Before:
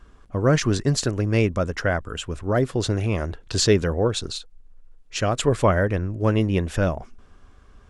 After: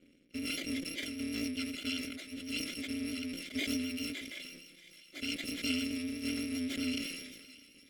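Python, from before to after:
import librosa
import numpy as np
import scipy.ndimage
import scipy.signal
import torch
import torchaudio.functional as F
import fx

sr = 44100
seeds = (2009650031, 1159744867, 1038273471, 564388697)

p1 = fx.bit_reversed(x, sr, seeds[0], block=256)
p2 = fx.vowel_filter(p1, sr, vowel='i')
p3 = fx.peak_eq(p2, sr, hz=540.0, db=13.5, octaves=0.77)
p4 = p3 + fx.echo_thinned(p3, sr, ms=618, feedback_pct=75, hz=1100.0, wet_db=-16.5, dry=0)
p5 = fx.vibrato(p4, sr, rate_hz=7.8, depth_cents=25.0)
p6 = fx.sustainer(p5, sr, db_per_s=40.0)
y = p6 * 10.0 ** (3.5 / 20.0)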